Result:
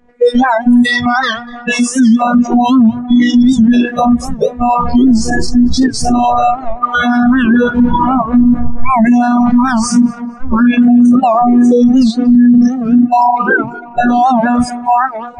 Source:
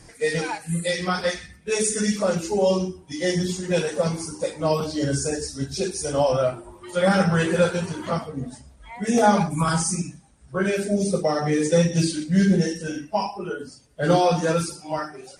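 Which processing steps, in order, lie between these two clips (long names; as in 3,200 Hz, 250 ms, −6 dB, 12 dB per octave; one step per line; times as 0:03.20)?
adaptive Wiener filter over 9 samples
camcorder AGC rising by 21 dB per second
in parallel at −10.5 dB: sample-rate reduction 3,300 Hz, jitter 0%
on the sum: mains-hum notches 60/120/180/240/300 Hz
phases set to zero 242 Hz
noise reduction from a noise print of the clip's start 29 dB
head-to-tape spacing loss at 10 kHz 22 dB
on a send: tape delay 230 ms, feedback 63%, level −22 dB, low-pass 2,000 Hz
on the sum: boost into a limiter +30 dB
wow of a warped record 78 rpm, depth 160 cents
level −1 dB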